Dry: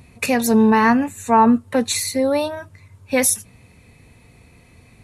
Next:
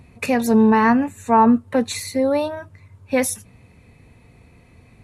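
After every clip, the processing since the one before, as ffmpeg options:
-af "highshelf=f=3000:g=-8.5"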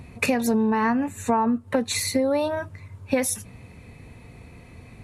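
-af "acompressor=threshold=0.0708:ratio=12,volume=1.68"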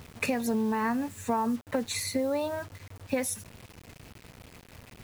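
-af "acrusher=bits=6:mix=0:aa=0.000001,volume=0.473"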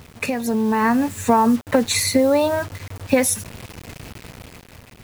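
-af "dynaudnorm=f=210:g=7:m=2.51,volume=1.68"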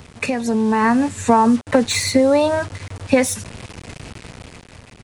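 -filter_complex "[0:a]aresample=22050,aresample=44100,acrossover=split=440|3500[s0][s1][s2];[s2]asoftclip=type=tanh:threshold=0.106[s3];[s0][s1][s3]amix=inputs=3:normalize=0,volume=1.26"

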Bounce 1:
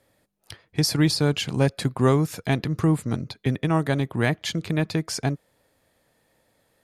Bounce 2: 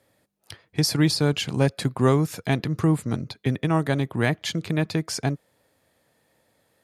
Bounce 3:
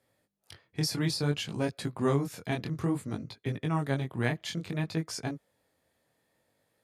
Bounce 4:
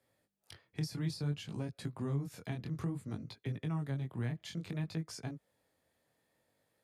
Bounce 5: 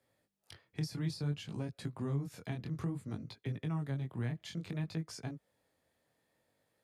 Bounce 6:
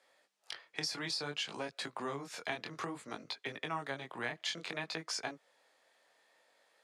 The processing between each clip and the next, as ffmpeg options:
-af "highpass=64"
-af "flanger=delay=17.5:depth=7.5:speed=0.58,volume=0.562"
-filter_complex "[0:a]acrossover=split=210[s0][s1];[s1]acompressor=threshold=0.01:ratio=6[s2];[s0][s2]amix=inputs=2:normalize=0,volume=0.668"
-af "highshelf=f=9800:g=-3.5"
-af "highpass=690,lowpass=7200,volume=3.76"

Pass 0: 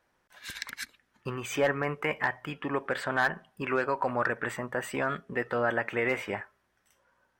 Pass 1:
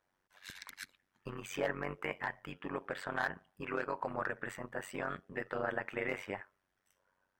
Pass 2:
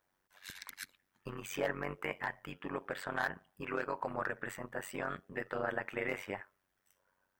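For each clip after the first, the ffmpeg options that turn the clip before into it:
-af "tremolo=f=94:d=0.889,volume=0.562"
-af "highshelf=f=11000:g=9.5"

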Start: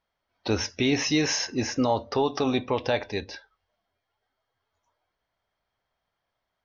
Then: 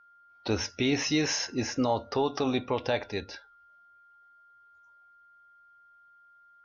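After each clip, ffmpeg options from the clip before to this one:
-af "aeval=exprs='val(0)+0.00224*sin(2*PI*1400*n/s)':c=same,volume=0.708"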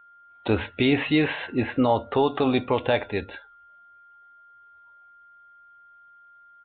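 -af "aresample=8000,aresample=44100,volume=2"

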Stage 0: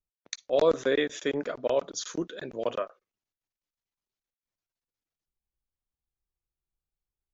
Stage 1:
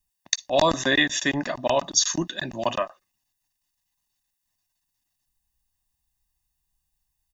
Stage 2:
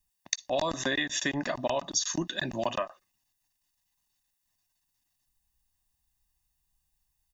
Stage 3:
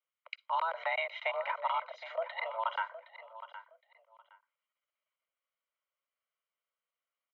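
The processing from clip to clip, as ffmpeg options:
-af "highshelf=f=3900:g=9.5,aecho=1:1:1.1:1,volume=1.88"
-af "acompressor=threshold=0.0501:ratio=6"
-af "highpass=f=220:t=q:w=0.5412,highpass=f=220:t=q:w=1.307,lowpass=f=2700:t=q:w=0.5176,lowpass=f=2700:t=q:w=0.7071,lowpass=f=2700:t=q:w=1.932,afreqshift=330,aecho=1:1:766|1532:0.2|0.0419,volume=0.708"

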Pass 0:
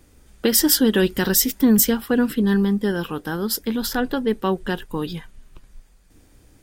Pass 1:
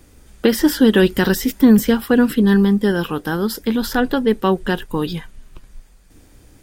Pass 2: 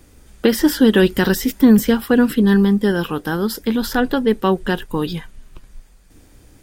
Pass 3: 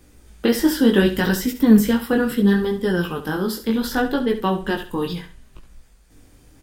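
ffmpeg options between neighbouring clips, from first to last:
-filter_complex "[0:a]acrossover=split=2600[s0][s1];[s1]acompressor=threshold=0.0316:ratio=4:attack=1:release=60[s2];[s0][s2]amix=inputs=2:normalize=0,volume=1.78"
-af anull
-filter_complex "[0:a]flanger=delay=16.5:depth=5.7:speed=0.69,asplit=2[s0][s1];[s1]aecho=0:1:68|136|204:0.266|0.0718|0.0194[s2];[s0][s2]amix=inputs=2:normalize=0"

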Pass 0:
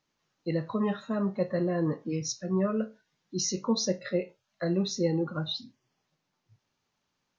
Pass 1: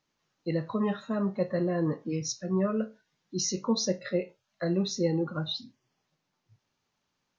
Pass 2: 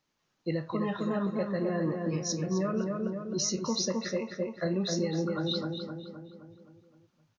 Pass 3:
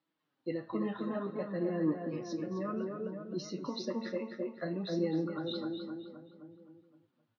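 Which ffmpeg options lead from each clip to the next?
-af anull
-filter_complex "[0:a]asplit=2[s0][s1];[s1]adelay=260,lowpass=f=2300:p=1,volume=0.631,asplit=2[s2][s3];[s3]adelay=260,lowpass=f=2300:p=1,volume=0.55,asplit=2[s4][s5];[s5]adelay=260,lowpass=f=2300:p=1,volume=0.55,asplit=2[s6][s7];[s7]adelay=260,lowpass=f=2300:p=1,volume=0.55,asplit=2[s8][s9];[s9]adelay=260,lowpass=f=2300:p=1,volume=0.55,asplit=2[s10][s11];[s11]adelay=260,lowpass=f=2300:p=1,volume=0.55,asplit=2[s12][s13];[s13]adelay=260,lowpass=f=2300:p=1,volume=0.55[s14];[s0][s2][s4][s6][s8][s10][s12][s14]amix=inputs=8:normalize=0,acrossover=split=900[s15][s16];[s15]alimiter=limit=0.0794:level=0:latency=1:release=200[s17];[s17][s16]amix=inputs=2:normalize=0"
-af "flanger=delay=6:depth=3.1:regen=32:speed=0.6:shape=sinusoidal,highpass=130,equalizer=f=150:t=q:w=4:g=-4,equalizer=f=290:t=q:w=4:g=8,equalizer=f=2400:t=q:w=4:g=-4,lowpass=f=3900:w=0.5412,lowpass=f=3900:w=1.3066,bandreject=f=225.2:t=h:w=4,bandreject=f=450.4:t=h:w=4,bandreject=f=675.6:t=h:w=4,bandreject=f=900.8:t=h:w=4,bandreject=f=1126:t=h:w=4,bandreject=f=1351.2:t=h:w=4,bandreject=f=1576.4:t=h:w=4,bandreject=f=1801.6:t=h:w=4,bandreject=f=2026.8:t=h:w=4,bandreject=f=2252:t=h:w=4,bandreject=f=2477.2:t=h:w=4,bandreject=f=2702.4:t=h:w=4,bandreject=f=2927.6:t=h:w=4,bandreject=f=3152.8:t=h:w=4,bandreject=f=3378:t=h:w=4,bandreject=f=3603.2:t=h:w=4,bandreject=f=3828.4:t=h:w=4,bandreject=f=4053.6:t=h:w=4,bandreject=f=4278.8:t=h:w=4,bandreject=f=4504:t=h:w=4,bandreject=f=4729.2:t=h:w=4,bandreject=f=4954.4:t=h:w=4,bandreject=f=5179.6:t=h:w=4,bandreject=f=5404.8:t=h:w=4,bandreject=f=5630:t=h:w=4,bandreject=f=5855.2:t=h:w=4,bandreject=f=6080.4:t=h:w=4,bandreject=f=6305.6:t=h:w=4,bandreject=f=6530.8:t=h:w=4,bandreject=f=6756:t=h:w=4,bandreject=f=6981.2:t=h:w=4,bandreject=f=7206.4:t=h:w=4,bandreject=f=7431.6:t=h:w=4,bandreject=f=7656.8:t=h:w=4,bandreject=f=7882:t=h:w=4,volume=0.841"

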